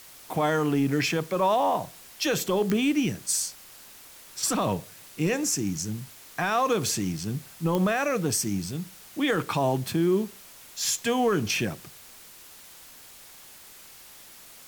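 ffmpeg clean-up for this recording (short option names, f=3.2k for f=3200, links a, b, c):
-af "adeclick=t=4,afftdn=nr=24:nf=-49"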